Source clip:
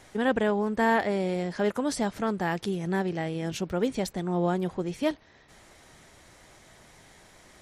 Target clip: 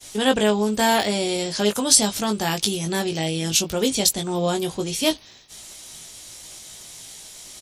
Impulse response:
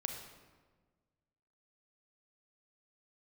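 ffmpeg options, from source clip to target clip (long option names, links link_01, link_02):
-filter_complex "[0:a]agate=range=-33dB:threshold=-51dB:ratio=3:detection=peak,aexciter=amount=5.8:drive=5:freq=2700,asplit=2[link_01][link_02];[link_02]adelay=19,volume=-5dB[link_03];[link_01][link_03]amix=inputs=2:normalize=0,volume=3dB"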